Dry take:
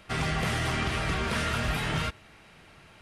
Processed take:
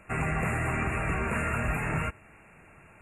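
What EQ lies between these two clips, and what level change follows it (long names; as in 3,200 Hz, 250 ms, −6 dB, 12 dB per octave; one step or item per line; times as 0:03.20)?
linear-phase brick-wall band-stop 2,800–6,700 Hz
high-shelf EQ 8,800 Hz −6.5 dB
0.0 dB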